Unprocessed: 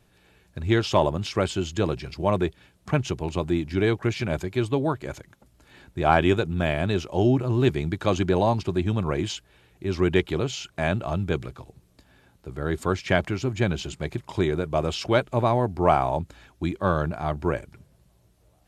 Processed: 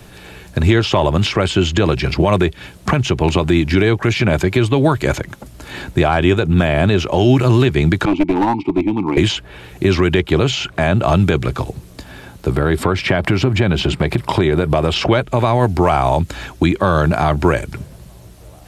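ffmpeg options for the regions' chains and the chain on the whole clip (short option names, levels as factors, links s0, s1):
-filter_complex "[0:a]asettb=1/sr,asplit=3[s0][s1][s2];[s0]atrim=end=8.054[s3];[s1]atrim=start=8.05:end=9.17,asetpts=PTS-STARTPTS,afade=t=in:d=0.004:c=qsin,afade=t=out:st=1.116:d=0.004:c=qsin,asplit=3[s4][s5][s6];[s4]bandpass=f=300:t=q:w=8,volume=1[s7];[s5]bandpass=f=870:t=q:w=8,volume=0.501[s8];[s6]bandpass=f=2240:t=q:w=8,volume=0.355[s9];[s7][s8][s9]amix=inputs=3:normalize=0,bandreject=f=6500:w=5.7,aeval=exprs='clip(val(0),-1,0.0251)':c=same[s10];[s2]atrim=start=9.166[s11];[s3][s10]acrossfade=d=0.004:c1=hsin:c2=qsin[s12];[s12][s11]acrossfade=d=0.004:c1=qsin:c2=hsin,asettb=1/sr,asplit=3[s13][s14][s15];[s13]atrim=end=12.514[s16];[s14]atrim=start=12.51:end=14.96,asetpts=PTS-STARTPTS,afade=t=in:d=0.004:c=qsin,afade=t=out:st=2.446:d=0.004:c=qsin,equalizer=f=6600:w=4.7:g=-9.5,acompressor=threshold=0.0251:ratio=3:attack=3.2:release=140:knee=1:detection=peak[s17];[s15]atrim=start=14.956[s18];[s16][s17]acrossfade=d=0.004:c1=hsin:c2=qsin[s19];[s19][s18]acrossfade=d=0.004:c1=qsin:c2=hsin,acrossover=split=110|1500|3400[s20][s21][s22][s23];[s20]acompressor=threshold=0.00794:ratio=4[s24];[s21]acompressor=threshold=0.0224:ratio=4[s25];[s22]acompressor=threshold=0.00708:ratio=4[s26];[s23]acompressor=threshold=0.00178:ratio=4[s27];[s24][s25][s26][s27]amix=inputs=4:normalize=0,alimiter=level_in=15.8:limit=0.891:release=50:level=0:latency=1,volume=0.75"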